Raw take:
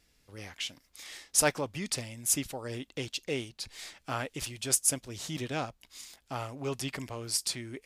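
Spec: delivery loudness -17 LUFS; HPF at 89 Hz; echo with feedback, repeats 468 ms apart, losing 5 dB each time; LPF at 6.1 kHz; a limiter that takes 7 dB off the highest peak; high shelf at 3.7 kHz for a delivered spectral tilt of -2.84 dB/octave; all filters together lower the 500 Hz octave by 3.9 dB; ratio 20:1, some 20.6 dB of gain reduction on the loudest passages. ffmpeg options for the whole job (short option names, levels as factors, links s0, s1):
-af "highpass=89,lowpass=6100,equalizer=f=500:t=o:g=-5,highshelf=f=3700:g=5.5,acompressor=threshold=0.00794:ratio=20,alimiter=level_in=3.76:limit=0.0631:level=0:latency=1,volume=0.266,aecho=1:1:468|936|1404|1872|2340|2808|3276:0.562|0.315|0.176|0.0988|0.0553|0.031|0.0173,volume=29.9"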